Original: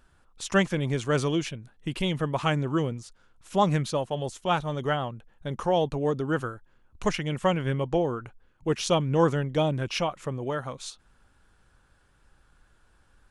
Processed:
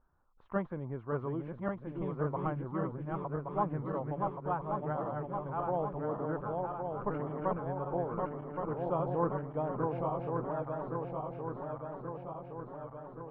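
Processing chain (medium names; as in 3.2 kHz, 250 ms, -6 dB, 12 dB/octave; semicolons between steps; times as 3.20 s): backward echo that repeats 561 ms, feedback 78%, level -3 dB; vibrato 0.68 Hz 39 cents; four-pole ladder low-pass 1.3 kHz, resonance 40%; trim -4 dB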